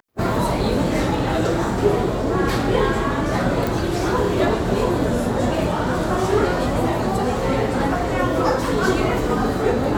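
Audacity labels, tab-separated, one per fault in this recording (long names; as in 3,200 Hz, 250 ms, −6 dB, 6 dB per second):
3.670000	3.670000	click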